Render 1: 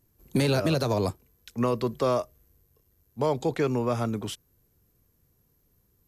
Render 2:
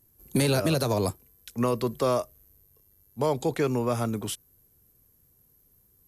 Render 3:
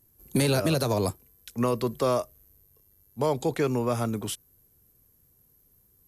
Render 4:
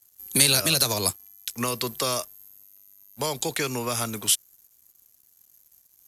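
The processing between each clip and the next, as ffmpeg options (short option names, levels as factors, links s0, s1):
-af "equalizer=f=11000:t=o:w=0.86:g=11"
-af anull
-filter_complex "[0:a]tiltshelf=f=1300:g=-9.5,acrossover=split=260|3000[s0][s1][s2];[s1]acompressor=threshold=0.0282:ratio=6[s3];[s0][s3][s2]amix=inputs=3:normalize=0,aeval=exprs='sgn(val(0))*max(abs(val(0))-0.002,0)':c=same,volume=1.88"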